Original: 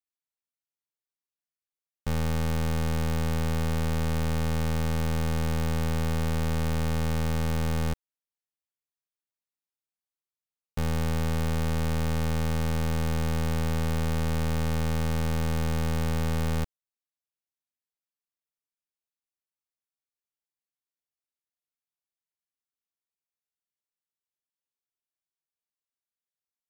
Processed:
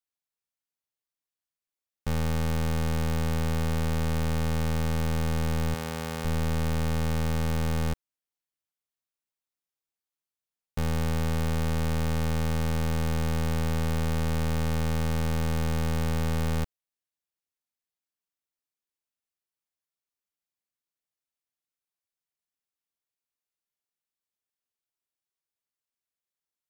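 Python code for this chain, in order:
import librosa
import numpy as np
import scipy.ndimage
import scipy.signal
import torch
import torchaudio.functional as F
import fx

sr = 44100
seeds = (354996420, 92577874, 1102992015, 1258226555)

y = fx.highpass(x, sr, hz=290.0, slope=6, at=(5.74, 6.25))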